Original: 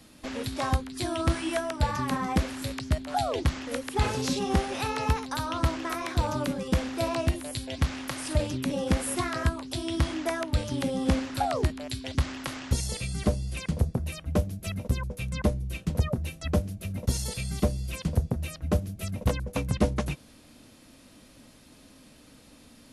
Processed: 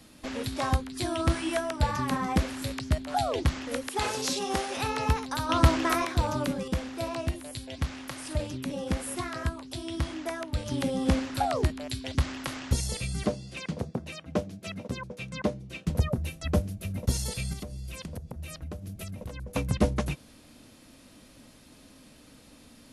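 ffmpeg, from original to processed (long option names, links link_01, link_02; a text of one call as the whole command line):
ffmpeg -i in.wav -filter_complex "[0:a]asettb=1/sr,asplit=3[link_01][link_02][link_03];[link_01]atrim=end=3.884[link_04];[link_02]atrim=start=3.88:end=4.77,asetpts=PTS-STARTPTS,afade=type=in:duration=0.004:curve=qsin,afade=type=out:start_time=0.886:duration=0.004:curve=qsin,bass=frequency=250:gain=-13,treble=frequency=4000:gain=4[link_05];[link_03]atrim=start=4.766[link_06];[link_04][link_05]acrossfade=duration=0.004:curve1=hsin:curve2=qsin[link_07];[link_07][link_06]acrossfade=duration=0.004:curve1=qsin:curve2=hsin,asettb=1/sr,asplit=3[link_08][link_09][link_10];[link_08]atrim=end=5.494[link_11];[link_09]atrim=start=5.49:end=6.05,asetpts=PTS-STARTPTS,afade=type=in:duration=0.004:curve=qsin,afade=type=out:start_time=0.556:duration=0.004:curve=qsin,acontrast=54[link_12];[link_10]atrim=start=6.046[link_13];[link_11][link_12]acrossfade=duration=0.004:curve1=hsin:curve2=qsin[link_14];[link_14][link_13]acrossfade=duration=0.004:curve1=qsin:curve2=hsin,asettb=1/sr,asplit=3[link_15][link_16][link_17];[link_15]atrim=end=13.264[link_18];[link_16]atrim=start=13.26:end=15.87,asetpts=PTS-STARTPTS,afade=type=in:duration=0.004:curve=qsin,afade=type=out:start_time=2.606:duration=0.004:curve=qsin,highpass=180,lowpass=6400[link_19];[link_17]atrim=start=15.866[link_20];[link_18][link_19]acrossfade=duration=0.004:curve1=hsin:curve2=qsin[link_21];[link_21][link_20]acrossfade=duration=0.004:curve1=qsin:curve2=hsin,asettb=1/sr,asplit=3[link_22][link_23][link_24];[link_22]atrim=end=17.534[link_25];[link_23]atrim=start=17.53:end=19.52,asetpts=PTS-STARTPTS,afade=type=in:duration=0.004:curve=qsin,afade=type=out:start_time=1.986:duration=0.004:curve=qsin,acompressor=threshold=-34dB:ratio=12:attack=3.2:release=140:knee=1:detection=peak[link_26];[link_24]atrim=start=19.516[link_27];[link_25][link_26]acrossfade=duration=0.004:curve1=hsin:curve2=qsin[link_28];[link_28][link_27]acrossfade=duration=0.004:curve1=qsin:curve2=hsin,asplit=3[link_29][link_30][link_31];[link_29]atrim=end=6.682[link_32];[link_30]atrim=start=6.678:end=10.662,asetpts=PTS-STARTPTS,volume=-4.5dB[link_33];[link_31]atrim=start=10.658[link_34];[link_32][link_33]acrossfade=duration=0.004:curve1=hsin:curve2=hsin[link_35];[link_35][link_34]acrossfade=duration=0.004:curve1=hsin:curve2=hsin" out.wav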